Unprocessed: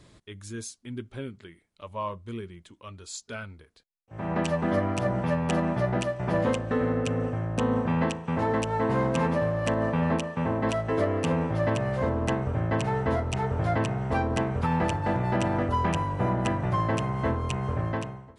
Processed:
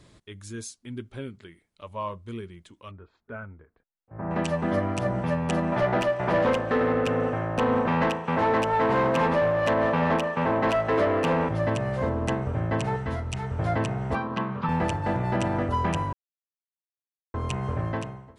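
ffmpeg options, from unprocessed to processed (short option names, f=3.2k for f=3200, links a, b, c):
-filter_complex "[0:a]asettb=1/sr,asplit=3[a][b][c];[a]atrim=end=2.914[d];[b]atrim=start=2.91:end=4.31,asetpts=PTS-STARTPTS,afade=t=in:d=0.004:c=qsin,afade=t=out:st=1.396:d=0.004:c=qsin,lowpass=f=1.7k:w=0.5412,lowpass=f=1.7k:w=1.3066[e];[c]atrim=start=4.306[f];[d][e]acrossfade=d=0.004:c1=hsin:c2=qsin[g];[g][f]acrossfade=d=0.004:c1=qsin:c2=hsin,asettb=1/sr,asplit=3[h][i][j];[h]atrim=end=5.724[k];[i]atrim=start=5.72:end=11.49,asetpts=PTS-STARTPTS,afade=t=in:d=0.004:c=qsin,afade=t=out:st=5.766:d=0.004:c=qsin,asplit=2[l][m];[m]highpass=f=720:p=1,volume=17dB,asoftclip=type=tanh:threshold=-14dB[n];[l][n]amix=inputs=2:normalize=0,lowpass=f=2.1k:p=1,volume=-6dB[o];[j]atrim=start=11.486[p];[k][o]acrossfade=d=0.004:c1=hsin:c2=qsin[q];[q][p]acrossfade=d=0.004:c1=qsin:c2=hsin,asettb=1/sr,asplit=3[r][s][t];[r]atrim=end=12.964[u];[s]atrim=start=12.96:end=13.59,asetpts=PTS-STARTPTS,afade=t=in:d=0.004:c=qsin,afade=t=out:st=0.626:d=0.004:c=qsin,equalizer=f=520:w=0.48:g=-8[v];[t]atrim=start=13.586[w];[u][v]acrossfade=d=0.004:c1=hsin:c2=qsin[x];[x][w]acrossfade=d=0.004:c1=qsin:c2=hsin,asettb=1/sr,asplit=3[y][z][aa];[y]atrim=end=14.154[ab];[z]atrim=start=14.15:end=14.69,asetpts=PTS-STARTPTS,afade=t=in:d=0.004:c=qsin,afade=t=out:st=0.536:d=0.004:c=qsin,highpass=f=140:w=0.5412,highpass=f=140:w=1.3066,equalizer=f=190:t=q:w=4:g=5,equalizer=f=290:t=q:w=4:g=-8,equalizer=f=450:t=q:w=4:g=-6,equalizer=f=710:t=q:w=4:g=-9,equalizer=f=1.1k:t=q:w=4:g=8,equalizer=f=2.1k:t=q:w=4:g=-4,lowpass=f=4.3k:w=0.5412,lowpass=f=4.3k:w=1.3066[ac];[aa]atrim=start=14.686[ad];[ab][ac]acrossfade=d=0.004:c1=hsin:c2=qsin[ae];[ae][ad]acrossfade=d=0.004:c1=qsin:c2=hsin,asplit=3[af][ag][ah];[af]atrim=end=16.13,asetpts=PTS-STARTPTS,afade=t=out:st=16.126:d=0.004:c=hsin[ai];[ag]atrim=start=16.13:end=17.34,asetpts=PTS-STARTPTS,volume=0[aj];[ah]atrim=start=17.34,asetpts=PTS-STARTPTS,afade=t=in:d=0.004:c=hsin[ak];[ai][aj][ak]concat=n=3:v=0:a=1"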